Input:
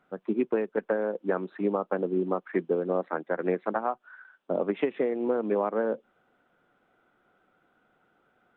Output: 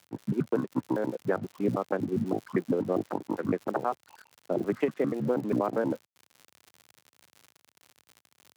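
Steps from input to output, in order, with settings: trilling pitch shifter -9 st, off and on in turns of 80 ms; crossover distortion -52 dBFS; crackle 100/s -38 dBFS; HPF 88 Hz 24 dB/oct

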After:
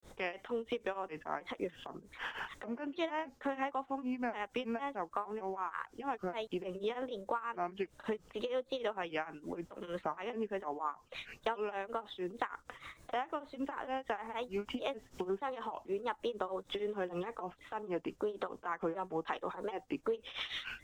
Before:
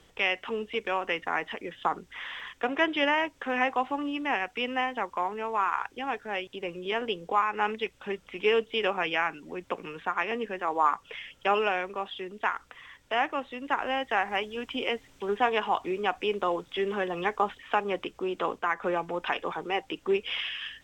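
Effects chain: bell 2600 Hz -10.5 dB 1.4 oct; compressor 6:1, threshold -40 dBFS, peak gain reduction 18 dB; grains 0.203 s, grains 6.5/s, spray 20 ms, pitch spread up and down by 3 st; gain +7.5 dB

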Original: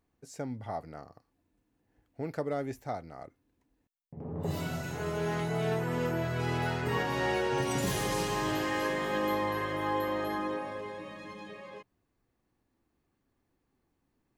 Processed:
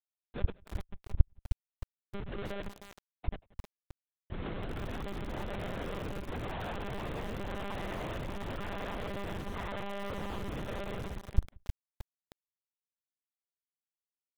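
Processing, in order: low shelf 250 Hz -9.5 dB; notches 50/100/150/200/250/300 Hz; in parallel at -3 dB: compressor 5:1, threshold -45 dBFS, peak gain reduction 15 dB; on the sum: limiter -26 dBFS, peak gain reduction 7.5 dB; tremolo saw down 0.94 Hz, depth 70%; grains 0.115 s, grains 17/s; Schmitt trigger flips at -40 dBFS; on a send: echo 0.181 s -23 dB; on the sum: monotone LPC vocoder at 8 kHz 200 Hz; lo-fi delay 0.311 s, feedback 35%, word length 7-bit, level -8 dB; gain +5.5 dB

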